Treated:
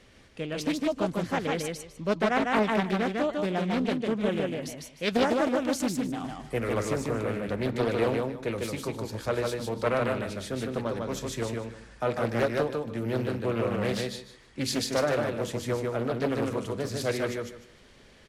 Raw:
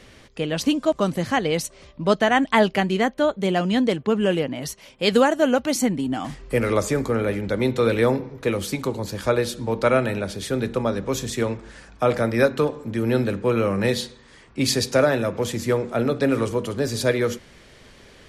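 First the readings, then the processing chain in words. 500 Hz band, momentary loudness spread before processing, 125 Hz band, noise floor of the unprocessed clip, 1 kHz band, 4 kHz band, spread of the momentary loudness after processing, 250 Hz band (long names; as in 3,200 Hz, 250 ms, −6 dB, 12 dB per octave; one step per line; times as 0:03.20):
−7.0 dB, 8 LU, −6.5 dB, −50 dBFS, −6.0 dB, −7.5 dB, 8 LU, −6.5 dB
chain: on a send: repeating echo 151 ms, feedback 22%, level −3 dB
on the sum: highs frequency-modulated by the lows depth 0.43 ms
level −8.5 dB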